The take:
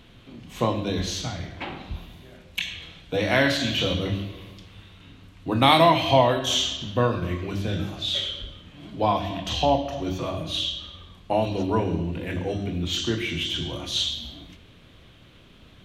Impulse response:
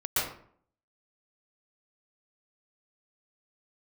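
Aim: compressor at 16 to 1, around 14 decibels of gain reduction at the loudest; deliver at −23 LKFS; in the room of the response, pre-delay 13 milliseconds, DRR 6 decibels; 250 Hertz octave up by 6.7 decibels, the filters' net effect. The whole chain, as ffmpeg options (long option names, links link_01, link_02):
-filter_complex "[0:a]equalizer=frequency=250:width_type=o:gain=8.5,acompressor=threshold=-24dB:ratio=16,asplit=2[link_01][link_02];[1:a]atrim=start_sample=2205,adelay=13[link_03];[link_02][link_03]afir=irnorm=-1:irlink=0,volume=-16dB[link_04];[link_01][link_04]amix=inputs=2:normalize=0,volume=6dB"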